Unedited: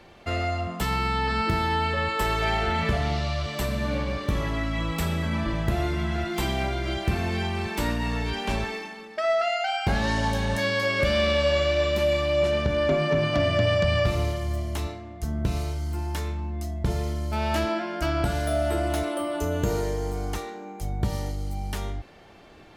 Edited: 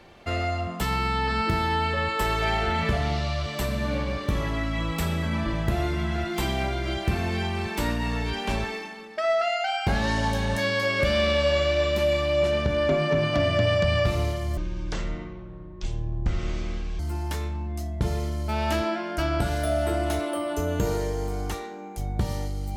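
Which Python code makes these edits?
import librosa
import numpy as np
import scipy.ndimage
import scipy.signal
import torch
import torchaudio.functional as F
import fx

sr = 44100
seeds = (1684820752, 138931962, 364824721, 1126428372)

y = fx.edit(x, sr, fx.speed_span(start_s=14.57, length_s=1.26, speed=0.52), tone=tone)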